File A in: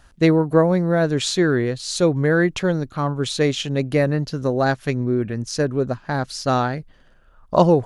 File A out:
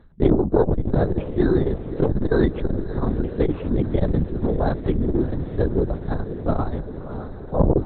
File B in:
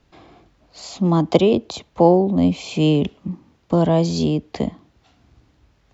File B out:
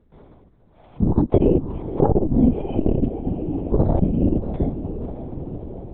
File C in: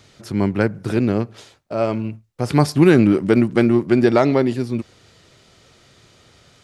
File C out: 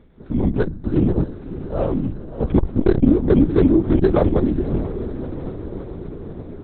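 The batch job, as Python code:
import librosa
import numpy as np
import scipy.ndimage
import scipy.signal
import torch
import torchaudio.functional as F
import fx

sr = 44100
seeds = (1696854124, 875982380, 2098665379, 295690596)

p1 = fx.highpass(x, sr, hz=210.0, slope=6)
p2 = fx.tilt_eq(p1, sr, slope=-4.5)
p3 = (np.kron(scipy.signal.resample_poly(p2, 1, 8), np.eye(8)[0]) * 8)[:len(p2)]
p4 = fx.air_absorb(p3, sr, metres=300.0)
p5 = p4 + fx.echo_diffused(p4, sr, ms=620, feedback_pct=68, wet_db=-13.0, dry=0)
p6 = fx.lpc_vocoder(p5, sr, seeds[0], excitation='whisper', order=8)
p7 = fx.transformer_sat(p6, sr, knee_hz=150.0)
y = p7 * librosa.db_to_amplitude(-4.0)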